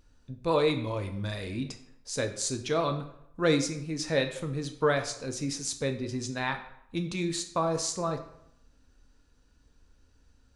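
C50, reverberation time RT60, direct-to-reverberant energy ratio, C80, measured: 10.5 dB, 0.75 s, 6.0 dB, 13.5 dB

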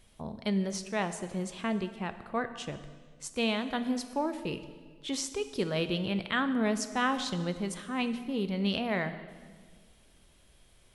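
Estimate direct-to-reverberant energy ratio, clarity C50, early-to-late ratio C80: 9.5 dB, 12.0 dB, 13.0 dB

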